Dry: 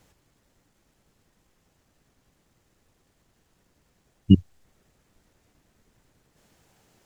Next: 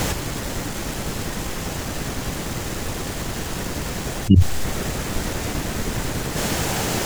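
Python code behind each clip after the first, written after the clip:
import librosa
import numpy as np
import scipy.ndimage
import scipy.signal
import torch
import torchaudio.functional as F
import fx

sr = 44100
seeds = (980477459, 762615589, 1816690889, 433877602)

y = fx.env_flatten(x, sr, amount_pct=100)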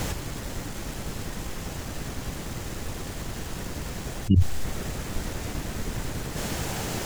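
y = fx.low_shelf(x, sr, hz=120.0, db=5.0)
y = y * librosa.db_to_amplitude(-8.5)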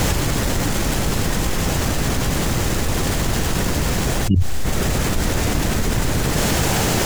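y = fx.env_flatten(x, sr, amount_pct=70)
y = y * librosa.db_to_amplitude(1.0)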